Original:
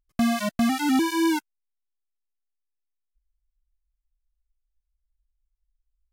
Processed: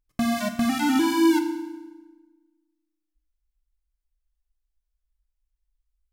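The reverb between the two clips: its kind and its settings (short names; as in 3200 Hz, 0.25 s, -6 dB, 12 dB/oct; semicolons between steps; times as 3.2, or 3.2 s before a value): FDN reverb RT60 1.2 s, low-frequency decay 1.35×, high-frequency decay 0.85×, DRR 5.5 dB; gain -1 dB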